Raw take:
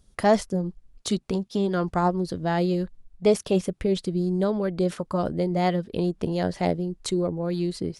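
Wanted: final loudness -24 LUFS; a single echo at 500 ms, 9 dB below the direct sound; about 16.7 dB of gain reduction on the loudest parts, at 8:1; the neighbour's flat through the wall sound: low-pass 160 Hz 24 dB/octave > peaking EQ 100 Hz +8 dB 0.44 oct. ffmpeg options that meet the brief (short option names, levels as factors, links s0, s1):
-af "acompressor=threshold=0.0251:ratio=8,lowpass=f=160:w=0.5412,lowpass=f=160:w=1.3066,equalizer=f=100:t=o:w=0.44:g=8,aecho=1:1:500:0.355,volume=11.2"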